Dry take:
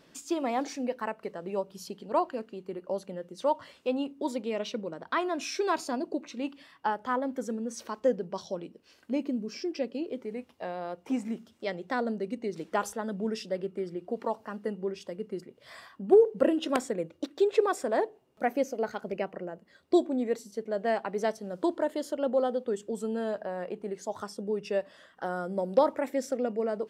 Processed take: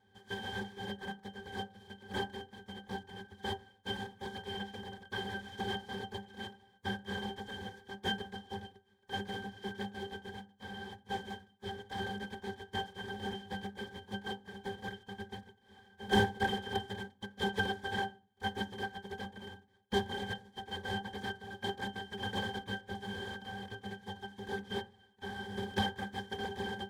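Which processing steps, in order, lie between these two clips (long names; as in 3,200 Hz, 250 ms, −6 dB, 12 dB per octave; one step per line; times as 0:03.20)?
compressing power law on the bin magnitudes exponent 0.12
random phases in short frames
resonances in every octave G, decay 0.13 s
convolution reverb RT60 0.35 s, pre-delay 3 ms, DRR 11.5 dB
level +9 dB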